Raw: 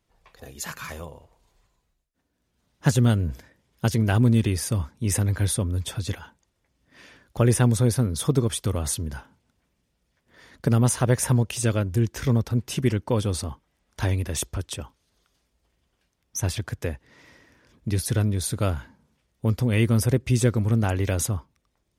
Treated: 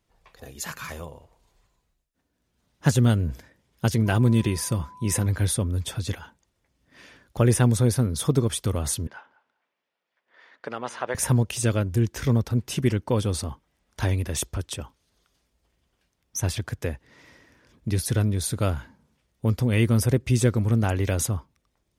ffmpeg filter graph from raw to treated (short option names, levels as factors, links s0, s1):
-filter_complex "[0:a]asettb=1/sr,asplit=3[s0][s1][s2];[s0]atrim=end=4.064[s3];[s1]atrim=start=4.06:end=5.26,asetpts=PTS-STARTPTS,afade=t=in:d=0.004:c=qsin,afade=t=out:st=1.196:d=0.004:c=qsin,aecho=1:1:5.8:0.3,atrim=end_sample=52920,aeval=exprs='val(0)+0.00631*sin(2*PI*1000*n/s)':c=same[s4];[s2]atrim=start=5.256[s5];[s3][s4]acrossfade=d=0.004:c1=hsin:c2=qsin[s6];[s6][s5]acrossfade=d=0.004:c1=qsin:c2=hsin,asettb=1/sr,asplit=3[s7][s8][s9];[s7]atrim=end=9.074[s10];[s8]atrim=start=9.07:end=11.15,asetpts=PTS-STARTPTS,afade=t=in:d=0.004:c=qsin,afade=t=out:st=2.076:d=0.004:c=qsin,highpass=640,lowpass=2900,asplit=2[s11][s12];[s12]adelay=195,lowpass=f=2000:p=1,volume=0.119,asplit=2[s13][s14];[s14]adelay=195,lowpass=f=2000:p=1,volume=0.17[s15];[s11][s13][s15]amix=inputs=3:normalize=0,atrim=end_sample=91728[s16];[s9]atrim=start=11.146[s17];[s10][s16]acrossfade=d=0.004:c1=hsin:c2=qsin[s18];[s18][s17]acrossfade=d=0.004:c1=qsin:c2=hsin"